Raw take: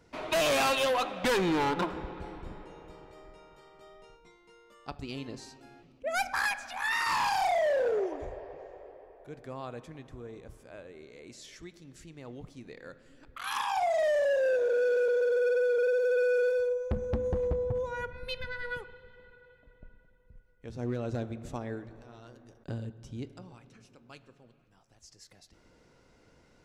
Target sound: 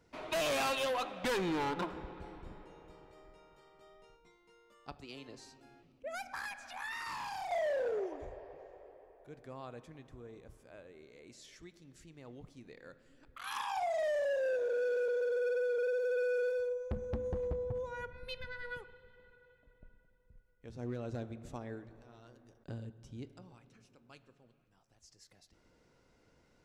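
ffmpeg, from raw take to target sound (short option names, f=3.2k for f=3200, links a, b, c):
-filter_complex "[0:a]asettb=1/sr,asplit=3[a][b][c];[a]atrim=end=4.974[d];[b]atrim=start=4.97:end=7.51,asetpts=PTS-STARTPTS,afade=t=in:d=0.004:c=qsin,afade=t=out:st=2.536:d=0.004:c=qsin,acrossover=split=100|320[e][f][g];[e]acompressor=threshold=-59dB:ratio=4[h];[f]acompressor=threshold=-52dB:ratio=4[i];[g]acompressor=threshold=-33dB:ratio=4[j];[h][i][j]amix=inputs=3:normalize=0[k];[c]atrim=start=7.506[l];[d][k]acrossfade=d=0.004:c1=hsin:c2=qsin[m];[m][l]acrossfade=d=0.004:c1=qsin:c2=hsin,volume=-6.5dB"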